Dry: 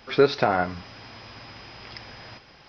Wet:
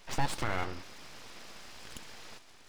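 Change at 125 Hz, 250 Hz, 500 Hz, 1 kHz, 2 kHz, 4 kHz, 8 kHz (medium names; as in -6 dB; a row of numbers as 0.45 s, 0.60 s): -5.5 dB, -12.0 dB, -20.5 dB, -10.0 dB, -8.5 dB, -8.5 dB, no reading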